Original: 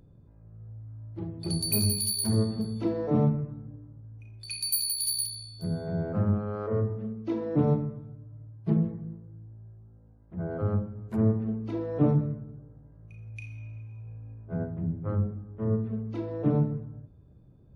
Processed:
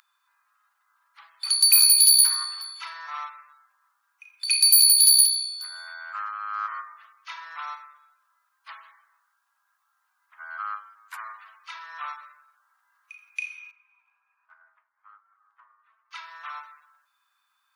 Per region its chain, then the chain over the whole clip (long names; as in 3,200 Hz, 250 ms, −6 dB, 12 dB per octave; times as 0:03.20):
0:13.71–0:16.11: low-pass filter 1,200 Hz 6 dB per octave + downward compressor 12 to 1, threshold −38 dBFS + flanger 1.2 Hz, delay 1.6 ms, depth 9.5 ms, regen +57%
whole clip: Butterworth high-pass 1,100 Hz 48 dB per octave; boost into a limiter +18.5 dB; level −4 dB